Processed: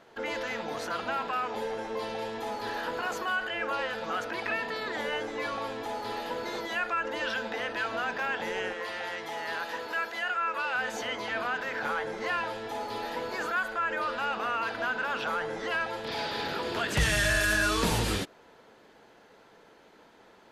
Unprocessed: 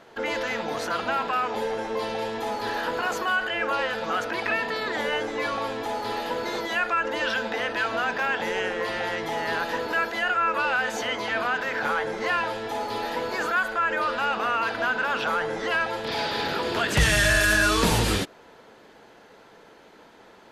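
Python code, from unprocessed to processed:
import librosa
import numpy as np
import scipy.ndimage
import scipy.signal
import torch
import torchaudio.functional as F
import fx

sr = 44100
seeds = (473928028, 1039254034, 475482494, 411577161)

y = fx.low_shelf(x, sr, hz=390.0, db=-10.0, at=(8.73, 10.75))
y = y * librosa.db_to_amplitude(-5.5)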